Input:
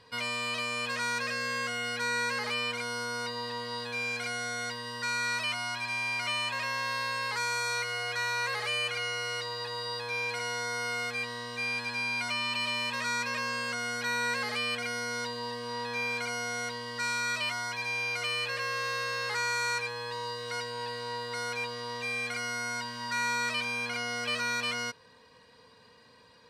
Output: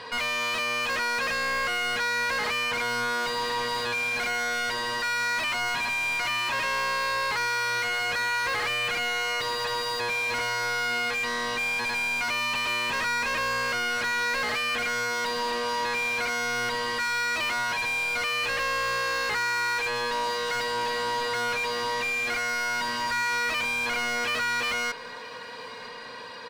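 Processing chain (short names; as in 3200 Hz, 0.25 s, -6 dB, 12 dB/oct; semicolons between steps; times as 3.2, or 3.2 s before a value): overdrive pedal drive 28 dB, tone 2500 Hz, clips at -20 dBFS; on a send: feedback echo 0.965 s, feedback 55%, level -23 dB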